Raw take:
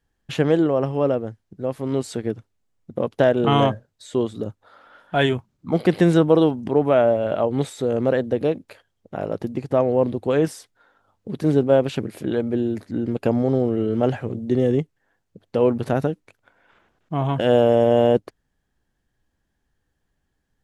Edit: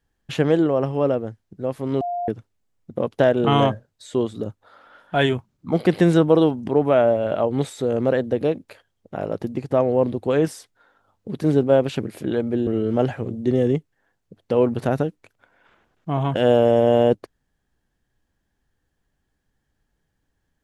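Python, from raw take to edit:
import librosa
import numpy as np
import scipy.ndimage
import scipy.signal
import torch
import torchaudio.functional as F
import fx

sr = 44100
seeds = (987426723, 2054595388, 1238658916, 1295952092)

y = fx.edit(x, sr, fx.bleep(start_s=2.01, length_s=0.27, hz=703.0, db=-23.0),
    fx.cut(start_s=12.67, length_s=1.04), tone=tone)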